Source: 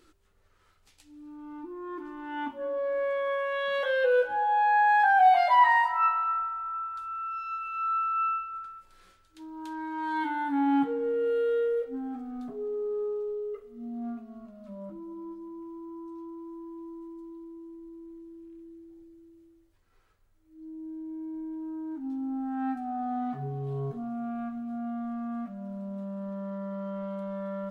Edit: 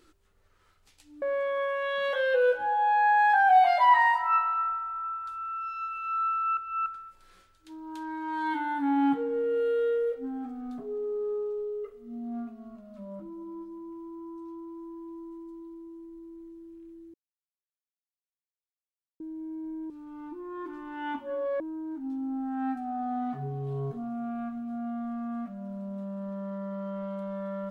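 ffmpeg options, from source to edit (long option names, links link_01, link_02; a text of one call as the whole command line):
ffmpeg -i in.wav -filter_complex "[0:a]asplit=8[link_01][link_02][link_03][link_04][link_05][link_06][link_07][link_08];[link_01]atrim=end=1.222[link_09];[link_02]atrim=start=2.918:end=8.272[link_10];[link_03]atrim=start=8.268:end=8.562,asetpts=PTS-STARTPTS,areverse[link_11];[link_04]atrim=start=8.558:end=18.84,asetpts=PTS-STARTPTS,afade=type=out:start_time=10.278:duration=0.004:curve=hsin[link_12];[link_05]atrim=start=18.84:end=20.9,asetpts=PTS-STARTPTS,volume=0[link_13];[link_06]atrim=start=20.9:end=21.602,asetpts=PTS-STARTPTS,afade=type=in:duration=0.004:curve=hsin[link_14];[link_07]atrim=start=1.218:end=2.922[link_15];[link_08]atrim=start=21.598[link_16];[link_09][link_10]acrossfade=duration=0.004:curve1=hsin:curve2=hsin[link_17];[link_17][link_11]acrossfade=duration=0.004:curve1=hsin:curve2=hsin[link_18];[link_12][link_13][link_14]concat=n=3:v=0:a=1[link_19];[link_18][link_19]acrossfade=duration=0.004:curve1=hsin:curve2=hsin[link_20];[link_20][link_15]acrossfade=duration=0.004:curve1=hsin:curve2=hsin[link_21];[link_21][link_16]acrossfade=duration=0.004:curve1=hsin:curve2=hsin" out.wav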